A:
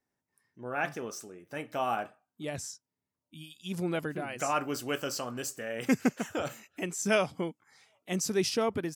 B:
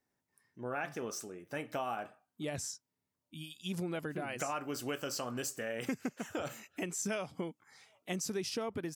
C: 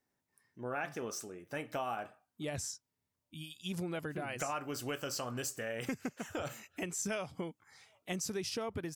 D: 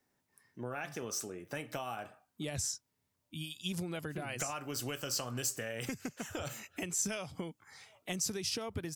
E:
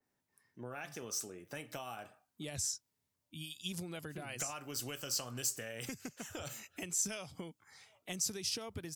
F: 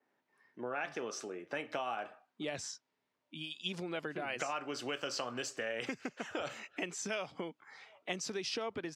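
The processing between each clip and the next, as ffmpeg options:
ffmpeg -i in.wav -af "acompressor=threshold=-35dB:ratio=6,volume=1dB" out.wav
ffmpeg -i in.wav -af "asubboost=boost=3:cutoff=110" out.wav
ffmpeg -i in.wav -filter_complex "[0:a]acrossover=split=130|3000[link_01][link_02][link_03];[link_02]acompressor=threshold=-45dB:ratio=3[link_04];[link_01][link_04][link_03]amix=inputs=3:normalize=0,volume=5dB" out.wav
ffmpeg -i in.wav -af "adynamicequalizer=threshold=0.00316:dfrequency=2900:dqfactor=0.7:tfrequency=2900:tqfactor=0.7:attack=5:release=100:ratio=0.375:range=2.5:mode=boostabove:tftype=highshelf,volume=-5dB" out.wav
ffmpeg -i in.wav -af "highpass=300,lowpass=2800,volume=8dB" out.wav

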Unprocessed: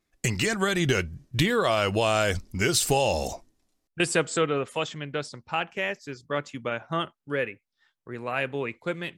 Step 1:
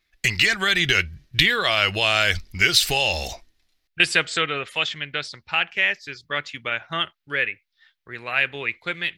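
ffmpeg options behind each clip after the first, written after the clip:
ffmpeg -i in.wav -af "equalizer=frequency=125:width_type=o:width=1:gain=-7,equalizer=frequency=250:width_type=o:width=1:gain=-10,equalizer=frequency=500:width_type=o:width=1:gain=-7,equalizer=frequency=1000:width_type=o:width=1:gain=-6,equalizer=frequency=2000:width_type=o:width=1:gain=6,equalizer=frequency=4000:width_type=o:width=1:gain=7,equalizer=frequency=8000:width_type=o:width=1:gain=-9,volume=5.5dB" out.wav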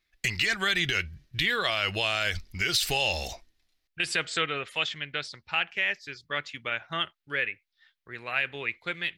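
ffmpeg -i in.wav -af "alimiter=limit=-9dB:level=0:latency=1:release=65,volume=-5dB" out.wav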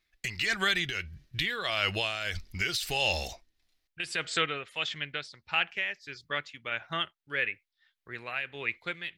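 ffmpeg -i in.wav -af "tremolo=f=1.6:d=0.56" out.wav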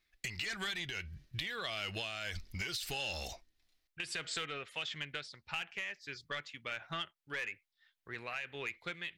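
ffmpeg -i in.wav -filter_complex "[0:a]acrossover=split=2800[link_01][link_02];[link_01]asoftclip=type=tanh:threshold=-29.5dB[link_03];[link_03][link_02]amix=inputs=2:normalize=0,acompressor=threshold=-35dB:ratio=4,volume=-1.5dB" out.wav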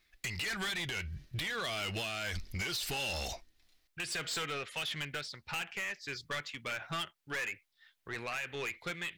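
ffmpeg -i in.wav -af "asoftclip=type=tanh:threshold=-39dB,volume=7dB" out.wav

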